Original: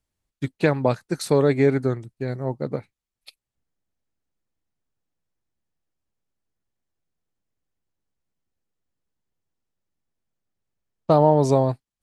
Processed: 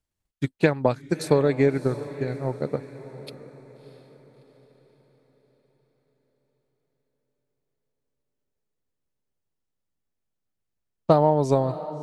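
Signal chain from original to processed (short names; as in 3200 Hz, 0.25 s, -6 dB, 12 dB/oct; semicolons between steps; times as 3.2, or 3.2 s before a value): transient shaper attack +5 dB, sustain -3 dB; diffused feedback echo 0.651 s, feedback 44%, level -14.5 dB; gain -3.5 dB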